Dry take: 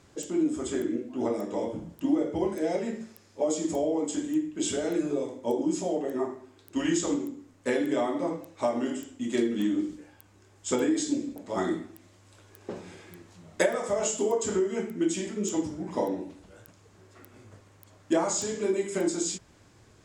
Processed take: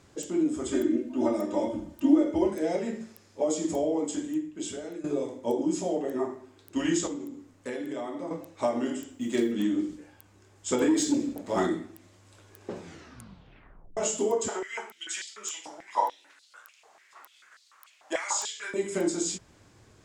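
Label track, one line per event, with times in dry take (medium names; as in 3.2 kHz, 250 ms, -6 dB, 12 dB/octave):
0.720000	2.500000	comb 3.3 ms, depth 80%
3.980000	5.040000	fade out, to -13.5 dB
7.070000	8.310000	compression 2:1, threshold -37 dBFS
9.100000	9.520000	companded quantiser 8-bit
10.810000	11.670000	waveshaping leveller passes 1
12.820000	12.820000	tape stop 1.15 s
14.480000	18.740000	step-sequenced high-pass 6.8 Hz 740–4200 Hz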